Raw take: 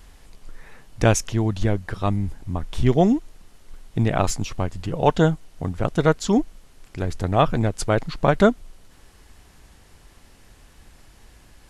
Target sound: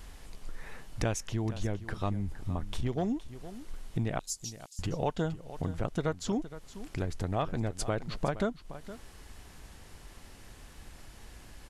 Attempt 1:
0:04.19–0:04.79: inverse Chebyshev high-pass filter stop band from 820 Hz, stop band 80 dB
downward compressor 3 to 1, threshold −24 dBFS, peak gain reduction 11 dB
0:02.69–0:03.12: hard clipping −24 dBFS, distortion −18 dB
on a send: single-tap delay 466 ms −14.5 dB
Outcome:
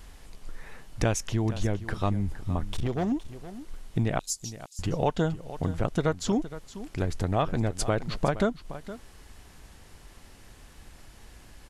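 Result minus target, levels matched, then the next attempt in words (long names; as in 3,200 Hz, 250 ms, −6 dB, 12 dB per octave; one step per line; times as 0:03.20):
downward compressor: peak gain reduction −5.5 dB
0:04.19–0:04.79: inverse Chebyshev high-pass filter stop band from 820 Hz, stop band 80 dB
downward compressor 3 to 1, threshold −32 dBFS, peak gain reduction 16.5 dB
0:02.69–0:03.12: hard clipping −24 dBFS, distortion −28 dB
on a send: single-tap delay 466 ms −14.5 dB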